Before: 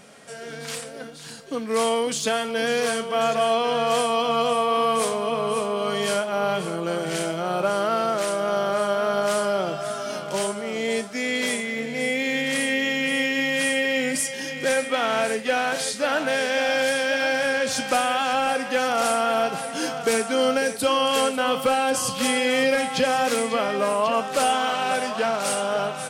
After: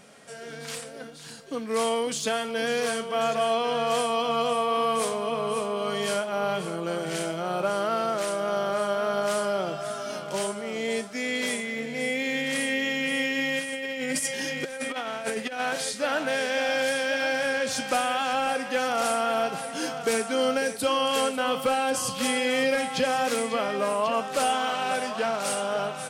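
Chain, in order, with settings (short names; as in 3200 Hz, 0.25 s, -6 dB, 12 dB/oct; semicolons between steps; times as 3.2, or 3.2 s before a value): 13.59–15.6 negative-ratio compressor -26 dBFS, ratio -0.5; gain -3.5 dB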